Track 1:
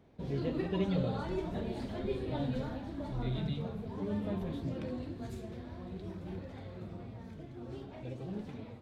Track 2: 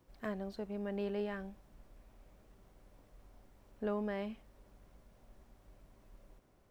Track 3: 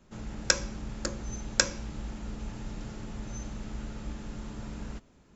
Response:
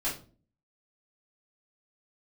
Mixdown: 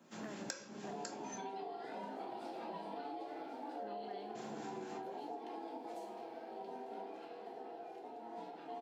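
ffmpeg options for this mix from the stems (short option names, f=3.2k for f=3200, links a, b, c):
-filter_complex "[0:a]equalizer=f=550:t=o:w=0.66:g=-13,aeval=exprs='val(0)*sin(2*PI*580*n/s)':c=same,adelay=650,volume=-4.5dB,asplit=2[a][b];[b]volume=-4.5dB[c];[1:a]volume=-7dB[d];[2:a]acrossover=split=1300[e][f];[e]aeval=exprs='val(0)*(1-0.5/2+0.5/2*cos(2*PI*4.2*n/s))':c=same[g];[f]aeval=exprs='val(0)*(1-0.5/2-0.5/2*cos(2*PI*4.2*n/s))':c=same[h];[g][h]amix=inputs=2:normalize=0,volume=-1.5dB,asplit=3[i][j][k];[i]atrim=end=1.38,asetpts=PTS-STARTPTS,afade=t=out:st=1.376:d=0.004:c=hsin[l];[j]atrim=start=1.38:end=4.35,asetpts=PTS-STARTPTS,volume=0[m];[k]atrim=start=4.35,asetpts=PTS-STARTPTS,afade=t=in:d=0.004:c=hsin[n];[l][m][n]concat=n=3:v=0:a=1,asplit=2[o][p];[p]volume=-6dB[q];[3:a]atrim=start_sample=2205[r];[c][q]amix=inputs=2:normalize=0[s];[s][r]afir=irnorm=-1:irlink=0[t];[a][d][o][t]amix=inputs=4:normalize=0,highpass=f=190:w=0.5412,highpass=f=190:w=1.3066,acompressor=threshold=-41dB:ratio=16"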